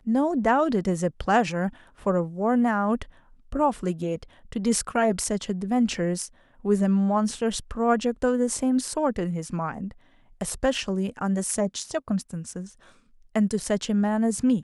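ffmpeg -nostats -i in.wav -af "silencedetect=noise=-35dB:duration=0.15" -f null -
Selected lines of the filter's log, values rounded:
silence_start: 1.69
silence_end: 2.06 | silence_duration: 0.37
silence_start: 3.04
silence_end: 3.52 | silence_duration: 0.49
silence_start: 4.23
silence_end: 4.52 | silence_duration: 0.29
silence_start: 6.27
silence_end: 6.65 | silence_duration: 0.38
silence_start: 9.91
silence_end: 10.41 | silence_duration: 0.50
silence_start: 12.67
silence_end: 13.36 | silence_duration: 0.69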